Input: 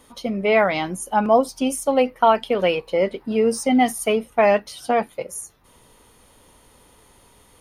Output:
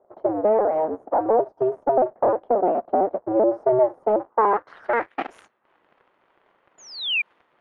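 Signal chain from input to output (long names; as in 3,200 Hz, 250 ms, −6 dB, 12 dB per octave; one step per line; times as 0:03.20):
sub-harmonics by changed cycles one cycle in 2, inverted
high-pass filter 360 Hz 12 dB per octave
sound drawn into the spectrogram fall, 0:06.78–0:07.22, 2,300–7,100 Hz −21 dBFS
downward compressor 3 to 1, threshold −23 dBFS, peak gain reduction 9.5 dB
leveller curve on the samples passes 2
high shelf with overshoot 2,100 Hz −6.5 dB, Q 1.5
low-pass filter sweep 640 Hz → 2,800 Hz, 0:04.03–0:05.22
one half of a high-frequency compander decoder only
level −4.5 dB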